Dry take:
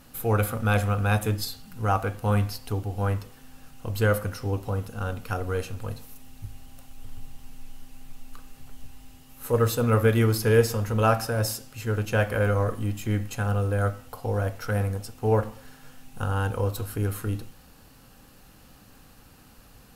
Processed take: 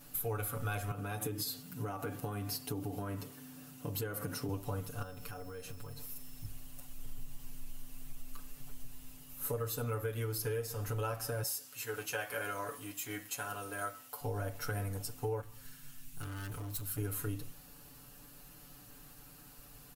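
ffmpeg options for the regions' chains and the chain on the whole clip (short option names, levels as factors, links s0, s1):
-filter_complex "[0:a]asettb=1/sr,asplit=3[s0][s1][s2];[s0]atrim=end=0.914[s3];[s1]atrim=start=0.91:end=4.49,asetpts=PTS-STARTPTS,afade=t=in:d=0.004:c=qsin,afade=t=out:st=3.576:d=0.004:c=qsin,highpass=100,acompressor=threshold=0.0316:ratio=10:attack=3.2:release=140:knee=1:detection=peak,equalizer=f=270:t=o:w=1.7:g=7.5[s4];[s2]atrim=start=4.486[s5];[s3][s4]acrossfade=d=0.004:c1=hsin:c2=qsin[s6];[s6][s5]acrossfade=d=0.004:c1=qsin:c2=hsin,asettb=1/sr,asplit=3[s7][s8][s9];[s7]atrim=end=5.024[s10];[s8]atrim=start=5.02:end=6.45,asetpts=PTS-STARTPTS,afade=t=in:d=0.004:c=qsin,afade=t=out:st=1.426:d=0.004:c=qsin,acompressor=threshold=0.0158:ratio=8:attack=3.2:release=140:knee=1:detection=peak,acrusher=bits=8:mode=log:mix=0:aa=0.000001,aeval=exprs='val(0)+0.00447*sin(2*PI*5300*n/s)':c=same[s11];[s9]atrim=start=6.446[s12];[s10][s11]acrossfade=d=0.004:c1=hsin:c2=qsin[s13];[s13][s12]acrossfade=d=0.004:c1=qsin:c2=hsin,asettb=1/sr,asplit=3[s14][s15][s16];[s14]atrim=end=11.434[s17];[s15]atrim=start=11.43:end=14.21,asetpts=PTS-STARTPTS,afade=t=in:d=0.004:c=qsin,afade=t=out:st=2.776:d=0.004:c=qsin,highpass=f=870:p=1,asplit=2[s18][s19];[s19]adelay=16,volume=0.299[s20];[s18][s20]amix=inputs=2:normalize=0,atrim=end_sample=122598[s21];[s16]atrim=start=14.206[s22];[s17][s21]acrossfade=d=0.004:c1=hsin:c2=qsin[s23];[s23][s22]acrossfade=d=0.004:c1=qsin:c2=hsin,asettb=1/sr,asplit=3[s24][s25][s26];[s24]atrim=end=15.414[s27];[s25]atrim=start=15.41:end=16.98,asetpts=PTS-STARTPTS,afade=t=in:d=0.004:c=qsin,afade=t=out:st=1.566:d=0.004:c=qsin,equalizer=f=560:w=0.7:g=-12.5,asoftclip=type=hard:threshold=0.02[s28];[s26]atrim=start=16.976[s29];[s27][s28]acrossfade=d=0.004:c1=hsin:c2=qsin[s30];[s30][s29]acrossfade=d=0.004:c1=qsin:c2=hsin,highshelf=f=8200:g=11.5,aecho=1:1:6.9:1,acompressor=threshold=0.0562:ratio=10,volume=0.398"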